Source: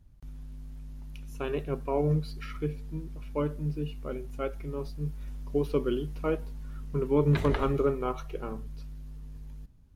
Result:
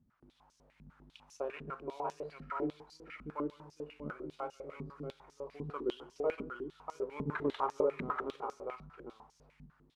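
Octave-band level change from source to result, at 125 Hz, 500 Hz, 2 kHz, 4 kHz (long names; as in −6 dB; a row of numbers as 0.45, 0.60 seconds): −17.5, −7.5, −3.5, −6.5 decibels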